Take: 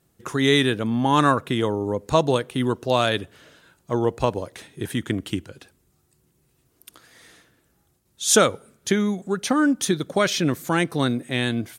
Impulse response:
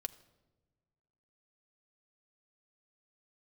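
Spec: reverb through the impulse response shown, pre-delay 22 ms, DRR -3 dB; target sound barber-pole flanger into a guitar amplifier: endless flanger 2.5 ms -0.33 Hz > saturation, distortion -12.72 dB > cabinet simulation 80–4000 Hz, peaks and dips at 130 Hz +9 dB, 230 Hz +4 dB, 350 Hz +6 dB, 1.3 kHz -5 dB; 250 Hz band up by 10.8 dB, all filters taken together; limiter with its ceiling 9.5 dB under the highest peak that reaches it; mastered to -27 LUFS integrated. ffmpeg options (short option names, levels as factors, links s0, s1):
-filter_complex "[0:a]equalizer=f=250:t=o:g=8.5,alimiter=limit=0.376:level=0:latency=1,asplit=2[s0][s1];[1:a]atrim=start_sample=2205,adelay=22[s2];[s1][s2]afir=irnorm=-1:irlink=0,volume=1.78[s3];[s0][s3]amix=inputs=2:normalize=0,asplit=2[s4][s5];[s5]adelay=2.5,afreqshift=-0.33[s6];[s4][s6]amix=inputs=2:normalize=1,asoftclip=threshold=0.211,highpass=80,equalizer=f=130:t=q:w=4:g=9,equalizer=f=230:t=q:w=4:g=4,equalizer=f=350:t=q:w=4:g=6,equalizer=f=1300:t=q:w=4:g=-5,lowpass=f=4000:w=0.5412,lowpass=f=4000:w=1.3066,volume=0.376"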